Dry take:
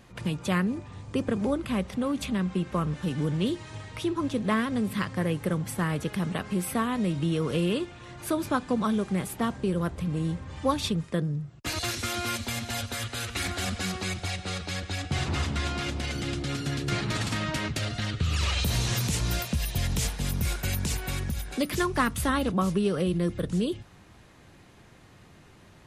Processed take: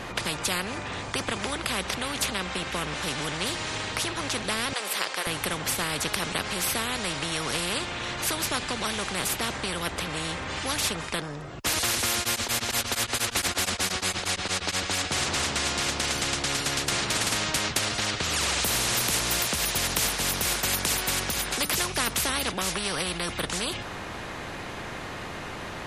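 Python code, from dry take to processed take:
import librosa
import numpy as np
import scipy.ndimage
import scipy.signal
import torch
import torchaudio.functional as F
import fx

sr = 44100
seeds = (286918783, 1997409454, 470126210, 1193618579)

y = fx.cheby2_highpass(x, sr, hz=250.0, order=4, stop_db=40, at=(4.73, 5.27))
y = fx.tremolo_abs(y, sr, hz=8.5, at=(12.19, 14.77))
y = fx.high_shelf(y, sr, hz=4900.0, db=-9.0)
y = fx.spectral_comp(y, sr, ratio=4.0)
y = F.gain(torch.from_numpy(y), 2.0).numpy()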